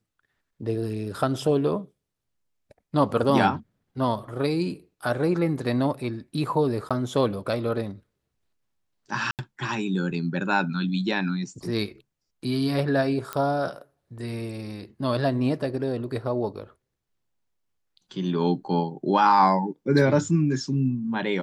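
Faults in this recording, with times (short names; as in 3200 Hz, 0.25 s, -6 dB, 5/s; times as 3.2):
6.89–6.91 gap 16 ms
9.31–9.39 gap 78 ms
13.33 pop -14 dBFS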